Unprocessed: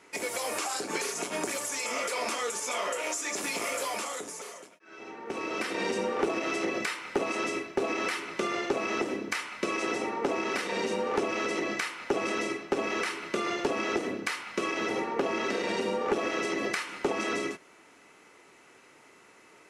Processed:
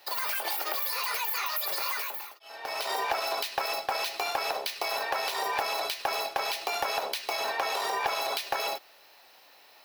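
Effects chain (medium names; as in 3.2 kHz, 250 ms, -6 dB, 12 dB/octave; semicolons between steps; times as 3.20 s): fifteen-band graphic EQ 100 Hz -5 dB, 4 kHz -5 dB, 10 kHz +11 dB; speed mistake 7.5 ips tape played at 15 ips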